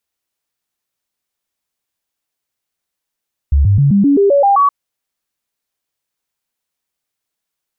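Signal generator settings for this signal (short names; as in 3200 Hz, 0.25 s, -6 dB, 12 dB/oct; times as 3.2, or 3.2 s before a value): stepped sine 70.6 Hz up, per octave 2, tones 9, 0.13 s, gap 0.00 s -7 dBFS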